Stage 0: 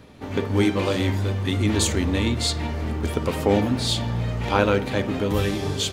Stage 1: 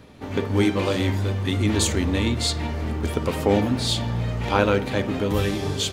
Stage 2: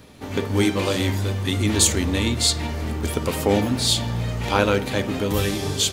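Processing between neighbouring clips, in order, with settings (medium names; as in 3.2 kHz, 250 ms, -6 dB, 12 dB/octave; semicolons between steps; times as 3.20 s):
no audible change
treble shelf 4.7 kHz +10.5 dB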